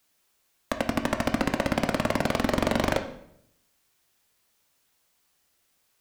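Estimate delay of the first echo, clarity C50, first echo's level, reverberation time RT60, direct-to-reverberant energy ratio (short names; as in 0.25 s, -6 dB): none, 10.0 dB, none, 0.75 s, 6.0 dB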